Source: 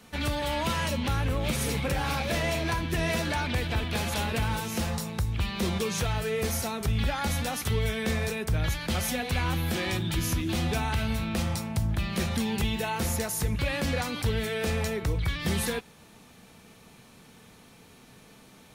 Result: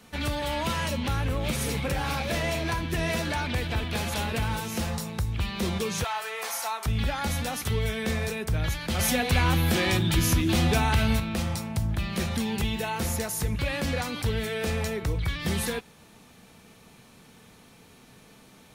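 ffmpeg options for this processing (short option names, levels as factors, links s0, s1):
-filter_complex "[0:a]asettb=1/sr,asplit=3[s0][s1][s2];[s0]atrim=end=6.044[s3];[s1]atrim=start=6.04:end=6.86,asetpts=PTS-STARTPTS,afade=t=in:d=0.004:c=qsin,afade=t=out:st=0.816:d=0.004:c=qsin,highpass=f=920:t=q:w=2.2[s4];[s2]atrim=start=6.856[s5];[s3][s4]acrossfade=d=0.004:c1=hsin:c2=qsin[s6];[s6][s5]acrossfade=d=0.004:c1=qsin:c2=hsin,asettb=1/sr,asplit=3[s7][s8][s9];[s7]atrim=end=8.994[s10];[s8]atrim=start=8.99:end=11.2,asetpts=PTS-STARTPTS,afade=t=in:d=0.004:c=qsin,afade=t=out:st=2.206:d=0.004:c=qsin,acontrast=31[s11];[s9]atrim=start=11.196[s12];[s10][s11]acrossfade=d=0.004:c1=hsin:c2=qsin[s13];[s13][s12]acrossfade=d=0.004:c1=qsin:c2=hsin"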